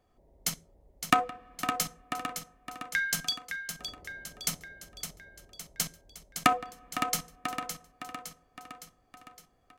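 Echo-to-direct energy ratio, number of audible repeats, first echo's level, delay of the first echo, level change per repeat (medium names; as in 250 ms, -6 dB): -6.5 dB, 6, -8.0 dB, 562 ms, -5.5 dB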